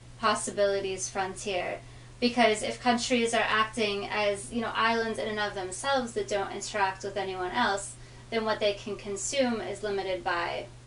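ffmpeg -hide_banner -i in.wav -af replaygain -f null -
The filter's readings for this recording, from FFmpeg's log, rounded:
track_gain = +8.3 dB
track_peak = 0.224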